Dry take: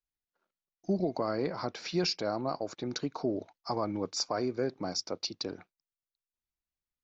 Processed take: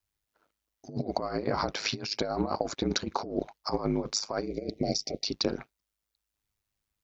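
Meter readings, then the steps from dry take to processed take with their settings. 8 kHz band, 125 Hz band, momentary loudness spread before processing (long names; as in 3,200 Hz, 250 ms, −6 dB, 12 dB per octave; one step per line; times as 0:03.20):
can't be measured, +2.5 dB, 7 LU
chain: compressor whose output falls as the input rises −35 dBFS, ratio −0.5
gain on a spectral selection 0:04.46–0:05.24, 730–1,900 Hz −27 dB
ring modulation 52 Hz
level +8.5 dB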